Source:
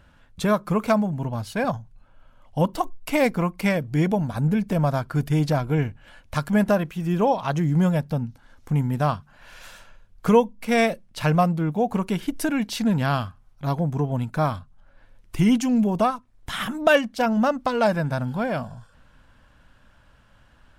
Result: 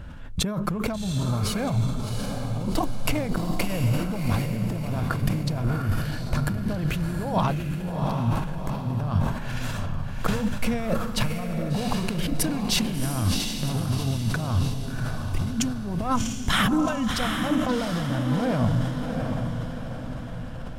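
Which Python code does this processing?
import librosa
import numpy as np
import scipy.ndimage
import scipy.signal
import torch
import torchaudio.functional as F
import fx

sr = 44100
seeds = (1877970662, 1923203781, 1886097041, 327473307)

p1 = fx.low_shelf(x, sr, hz=380.0, db=10.0)
p2 = fx.over_compress(p1, sr, threshold_db=-26.0, ratio=-1.0)
p3 = p2 + fx.echo_diffused(p2, sr, ms=729, feedback_pct=50, wet_db=-4.5, dry=0)
p4 = fx.sustainer(p3, sr, db_per_s=52.0)
y = p4 * librosa.db_to_amplitude(-2.0)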